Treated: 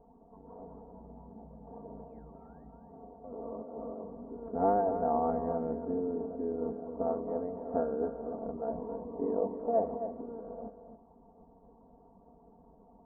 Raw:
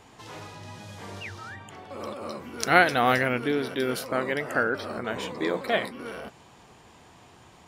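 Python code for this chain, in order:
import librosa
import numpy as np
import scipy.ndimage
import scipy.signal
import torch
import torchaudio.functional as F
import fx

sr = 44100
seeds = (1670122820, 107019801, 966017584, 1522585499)

p1 = scipy.signal.sosfilt(scipy.signal.butter(6, 850.0, 'lowpass', fs=sr, output='sos'), x)
p2 = fx.hpss(p1, sr, part='percussive', gain_db=9)
p3 = fx.stretch_grains(p2, sr, factor=1.7, grain_ms=21.0)
p4 = p3 + fx.echo_single(p3, sr, ms=269, db=-9.5, dry=0)
y = p4 * librosa.db_to_amplitude(-8.0)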